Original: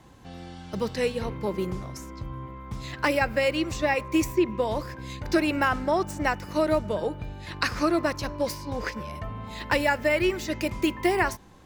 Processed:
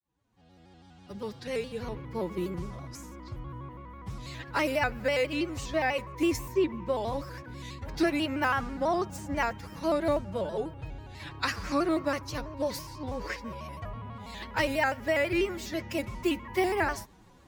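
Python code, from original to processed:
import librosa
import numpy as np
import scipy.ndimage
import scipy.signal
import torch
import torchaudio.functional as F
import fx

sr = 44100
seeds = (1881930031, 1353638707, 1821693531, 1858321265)

y = fx.fade_in_head(x, sr, length_s=1.54)
y = fx.stretch_vocoder(y, sr, factor=1.5)
y = fx.vibrato_shape(y, sr, shape='square', rate_hz=6.1, depth_cents=100.0)
y = F.gain(torch.from_numpy(y), -4.0).numpy()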